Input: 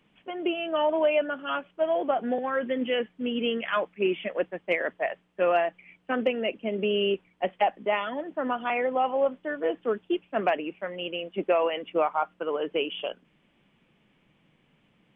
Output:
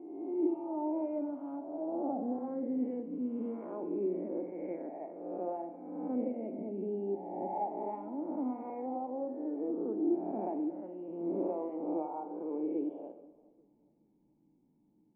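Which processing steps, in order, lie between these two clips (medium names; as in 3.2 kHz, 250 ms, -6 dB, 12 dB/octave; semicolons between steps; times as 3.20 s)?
reverse spectral sustain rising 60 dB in 1.32 s; cascade formant filter u; tape echo 418 ms, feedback 33%, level -22 dB; Schroeder reverb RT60 0.88 s, combs from 32 ms, DRR 8 dB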